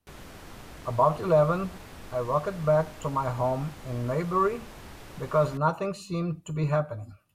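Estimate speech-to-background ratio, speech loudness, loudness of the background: 18.5 dB, −27.5 LKFS, −46.0 LKFS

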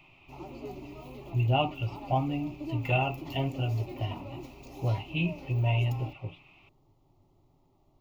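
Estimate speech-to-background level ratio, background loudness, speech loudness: 13.0 dB, −44.0 LKFS, −31.0 LKFS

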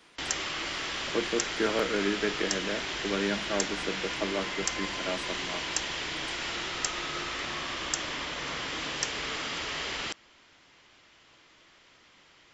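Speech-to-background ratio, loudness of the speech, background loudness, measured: −1.5 dB, −33.5 LKFS, −32.0 LKFS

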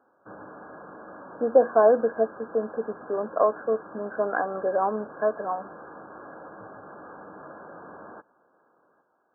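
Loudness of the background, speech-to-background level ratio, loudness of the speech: −44.0 LKFS, 18.5 dB, −25.5 LKFS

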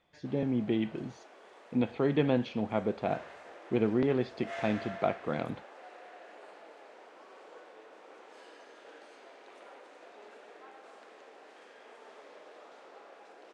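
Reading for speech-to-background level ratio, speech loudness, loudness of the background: 18.0 dB, −32.0 LKFS, −50.0 LKFS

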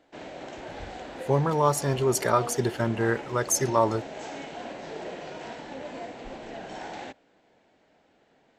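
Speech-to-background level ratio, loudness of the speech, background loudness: 13.5 dB, −25.5 LKFS, −39.0 LKFS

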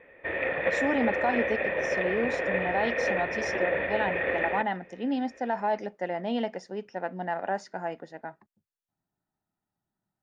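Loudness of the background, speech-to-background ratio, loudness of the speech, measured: −28.5 LKFS, −3.5 dB, −32.0 LKFS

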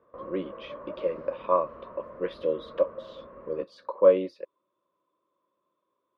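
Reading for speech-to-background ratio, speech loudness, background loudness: 16.5 dB, −28.0 LKFS, −44.5 LKFS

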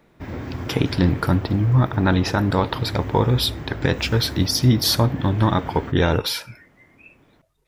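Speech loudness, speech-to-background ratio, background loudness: −20.5 LKFS, 13.0 dB, −33.5 LKFS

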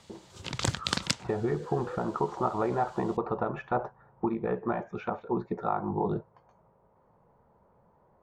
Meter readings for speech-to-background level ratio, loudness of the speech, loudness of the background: 0.0 dB, −32.0 LKFS, −32.0 LKFS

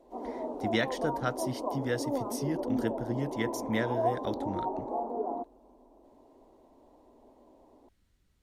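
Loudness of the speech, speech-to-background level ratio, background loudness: −34.5 LKFS, 0.5 dB, −35.0 LKFS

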